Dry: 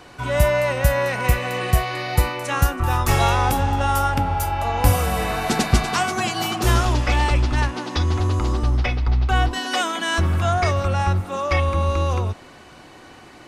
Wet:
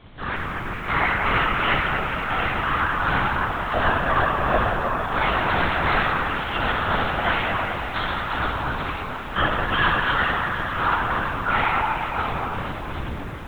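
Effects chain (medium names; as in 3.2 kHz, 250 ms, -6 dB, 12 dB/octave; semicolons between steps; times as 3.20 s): high-pass 750 Hz 24 dB/octave; peaking EQ 1.4 kHz +7.5 dB 0.55 oct; peak limiter -17 dBFS, peak gain reduction 10.5 dB; level rider gain up to 8 dB; added noise pink -30 dBFS; trance gate ".x...x.x" 85 bpm -12 dB; ring modulator 220 Hz; echo whose repeats swap between lows and highs 232 ms, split 1.9 kHz, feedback 73%, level -7 dB; reverberation RT60 2.2 s, pre-delay 6 ms, DRR -7.5 dB; LPC vocoder at 8 kHz whisper; bit-crushed delay 171 ms, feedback 55%, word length 6-bit, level -14 dB; trim -6.5 dB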